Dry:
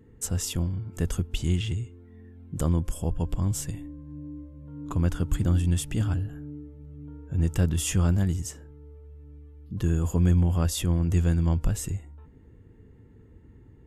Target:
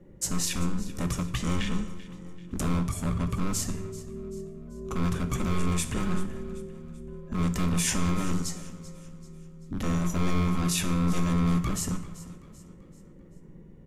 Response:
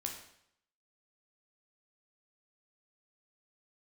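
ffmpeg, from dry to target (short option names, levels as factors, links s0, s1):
-filter_complex "[0:a]aeval=exprs='val(0)*sin(2*PI*540*n/s)':c=same,bandreject=f=50:t=h:w=6,bandreject=f=100:t=h:w=6,bandreject=f=150:t=h:w=6,bandreject=f=200:t=h:w=6,bandreject=f=250:t=h:w=6,bandreject=f=300:t=h:w=6,bandreject=f=350:t=h:w=6,bandreject=f=400:t=h:w=6,acrossover=split=2800[s0][s1];[s0]volume=28.2,asoftclip=hard,volume=0.0355[s2];[s2][s1]amix=inputs=2:normalize=0,afreqshift=-450,aecho=1:1:387|774|1161|1548:0.141|0.0622|0.0273|0.012,asplit=2[s3][s4];[1:a]atrim=start_sample=2205[s5];[s4][s5]afir=irnorm=-1:irlink=0,volume=1[s6];[s3][s6]amix=inputs=2:normalize=0"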